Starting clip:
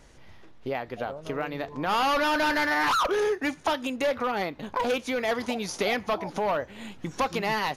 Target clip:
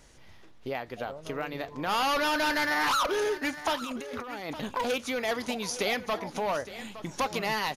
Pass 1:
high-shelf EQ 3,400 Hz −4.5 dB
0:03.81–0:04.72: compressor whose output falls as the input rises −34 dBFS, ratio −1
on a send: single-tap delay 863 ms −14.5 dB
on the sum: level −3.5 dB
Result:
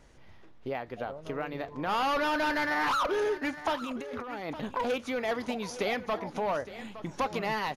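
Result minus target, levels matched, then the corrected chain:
8,000 Hz band −7.5 dB
high-shelf EQ 3,400 Hz +7 dB
0:03.81–0:04.72: compressor whose output falls as the input rises −34 dBFS, ratio −1
on a send: single-tap delay 863 ms −14.5 dB
on the sum: level −3.5 dB

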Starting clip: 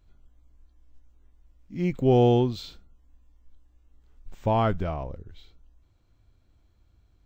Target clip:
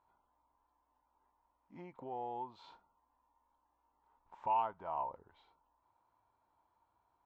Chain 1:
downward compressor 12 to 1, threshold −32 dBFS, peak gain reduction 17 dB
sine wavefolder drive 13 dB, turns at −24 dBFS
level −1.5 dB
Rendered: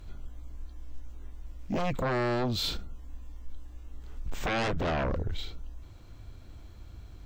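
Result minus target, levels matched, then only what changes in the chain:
1,000 Hz band −6.0 dB
add after downward compressor: resonant band-pass 930 Hz, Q 11

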